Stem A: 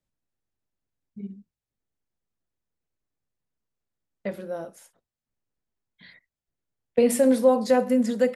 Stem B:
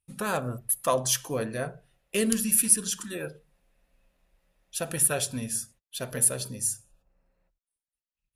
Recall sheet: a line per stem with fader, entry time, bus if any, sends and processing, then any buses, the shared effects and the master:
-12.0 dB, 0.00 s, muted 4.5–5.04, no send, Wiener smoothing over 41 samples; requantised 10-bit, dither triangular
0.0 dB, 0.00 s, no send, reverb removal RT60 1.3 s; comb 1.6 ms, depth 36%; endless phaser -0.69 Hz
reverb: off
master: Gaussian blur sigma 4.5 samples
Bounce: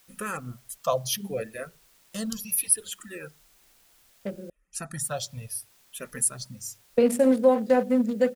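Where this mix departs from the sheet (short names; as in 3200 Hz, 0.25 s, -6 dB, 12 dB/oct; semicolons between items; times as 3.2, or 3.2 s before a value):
stem A -12.0 dB -> -0.5 dB; master: missing Gaussian blur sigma 4.5 samples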